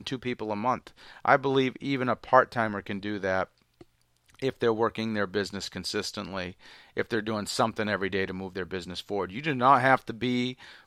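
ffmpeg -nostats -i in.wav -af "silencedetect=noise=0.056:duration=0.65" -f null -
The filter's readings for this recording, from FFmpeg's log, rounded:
silence_start: 3.43
silence_end: 4.43 | silence_duration: 0.99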